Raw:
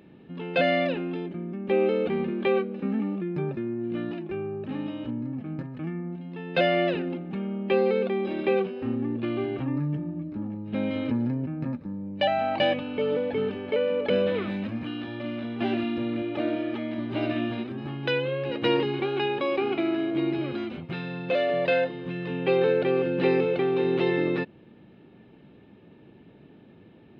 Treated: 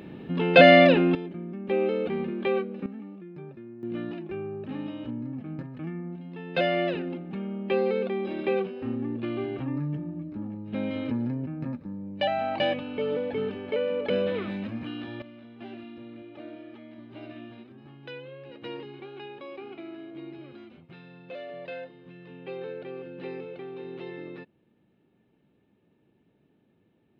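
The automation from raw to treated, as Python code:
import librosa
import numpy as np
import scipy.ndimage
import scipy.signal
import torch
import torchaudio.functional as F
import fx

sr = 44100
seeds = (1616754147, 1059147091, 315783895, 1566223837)

y = fx.gain(x, sr, db=fx.steps((0.0, 9.5), (1.15, -2.5), (2.86, -13.0), (3.83, -2.5), (15.22, -15.0)))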